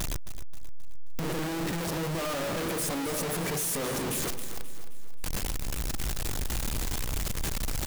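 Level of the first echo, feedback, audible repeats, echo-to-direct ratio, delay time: -11.5 dB, 45%, 4, -10.5 dB, 265 ms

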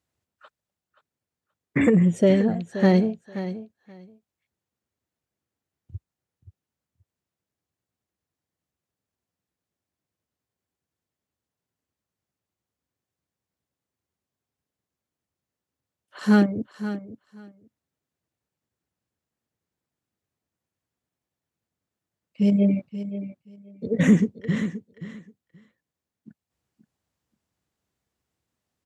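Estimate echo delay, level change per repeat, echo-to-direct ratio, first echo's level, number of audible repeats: 528 ms, -16.0 dB, -12.5 dB, -12.5 dB, 2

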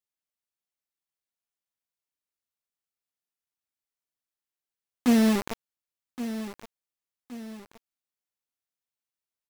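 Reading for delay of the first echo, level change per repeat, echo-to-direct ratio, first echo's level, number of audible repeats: 1120 ms, -7.5 dB, -12.0 dB, -12.5 dB, 2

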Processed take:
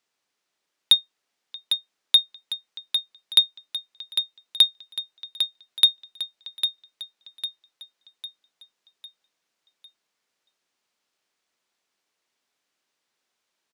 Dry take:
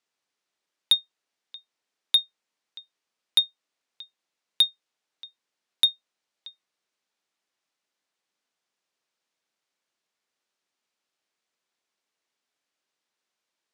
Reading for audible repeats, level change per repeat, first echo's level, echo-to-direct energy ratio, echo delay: 5, -6.5 dB, -8.0 dB, -7.0 dB, 802 ms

